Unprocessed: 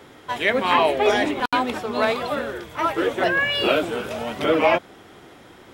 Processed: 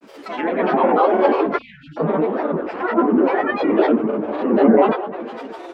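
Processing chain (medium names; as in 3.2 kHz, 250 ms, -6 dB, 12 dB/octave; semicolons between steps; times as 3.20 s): resonant low shelf 210 Hz -12 dB, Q 3; on a send: tape echo 247 ms, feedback 71%, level -14 dB, low-pass 2.2 kHz; on the sum: gated-style reverb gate 180 ms rising, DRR -4 dB; low-pass that closes with the level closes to 1.1 kHz, closed at -17 dBFS; spectral selection erased 1.60–1.97 s, 230–1900 Hz; granulator, spray 30 ms, pitch spread up and down by 7 st; trim -1 dB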